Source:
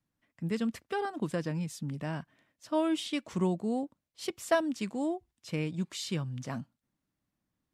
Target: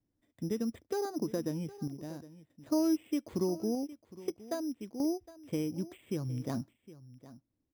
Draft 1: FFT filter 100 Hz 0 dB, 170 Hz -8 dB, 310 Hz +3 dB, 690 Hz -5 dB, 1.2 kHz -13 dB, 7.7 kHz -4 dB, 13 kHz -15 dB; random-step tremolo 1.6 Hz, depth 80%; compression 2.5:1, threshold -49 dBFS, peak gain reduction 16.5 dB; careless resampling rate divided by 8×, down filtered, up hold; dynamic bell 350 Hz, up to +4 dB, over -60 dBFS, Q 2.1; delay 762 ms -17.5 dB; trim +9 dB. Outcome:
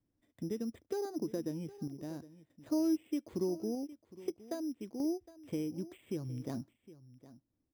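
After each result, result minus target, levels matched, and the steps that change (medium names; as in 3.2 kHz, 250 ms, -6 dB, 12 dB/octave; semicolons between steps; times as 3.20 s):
compression: peak gain reduction +5.5 dB; 1 kHz band -3.0 dB
change: compression 2.5:1, threshold -40 dBFS, peak gain reduction 11 dB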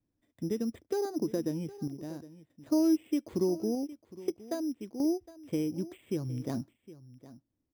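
1 kHz band -3.5 dB
change: dynamic bell 1.2 kHz, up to +4 dB, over -60 dBFS, Q 2.1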